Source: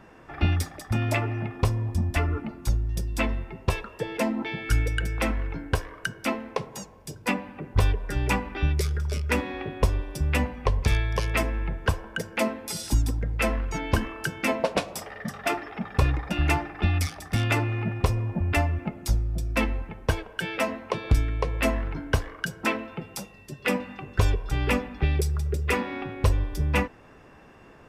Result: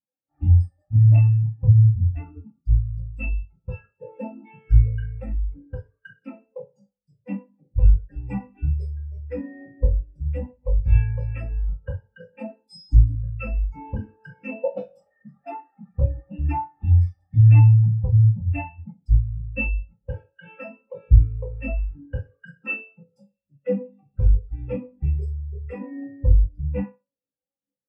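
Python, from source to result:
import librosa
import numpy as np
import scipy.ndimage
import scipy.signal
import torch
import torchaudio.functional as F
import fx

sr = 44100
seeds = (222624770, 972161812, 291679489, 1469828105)

y = fx.rev_fdn(x, sr, rt60_s=0.59, lf_ratio=0.9, hf_ratio=0.95, size_ms=11.0, drr_db=-4.0)
y = fx.spectral_expand(y, sr, expansion=2.5)
y = y * librosa.db_to_amplitude(4.5)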